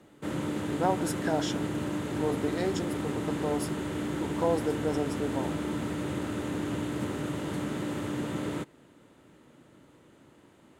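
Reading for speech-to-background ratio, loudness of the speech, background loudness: 0.0 dB, -33.0 LUFS, -33.0 LUFS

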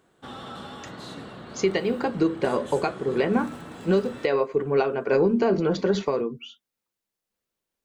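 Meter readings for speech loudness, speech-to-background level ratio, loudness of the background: -24.5 LUFS, 16.0 dB, -40.5 LUFS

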